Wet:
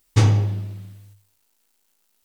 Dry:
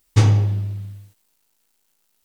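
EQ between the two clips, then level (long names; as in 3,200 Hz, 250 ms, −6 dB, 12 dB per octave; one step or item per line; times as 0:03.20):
mains-hum notches 50/100/150 Hz
0.0 dB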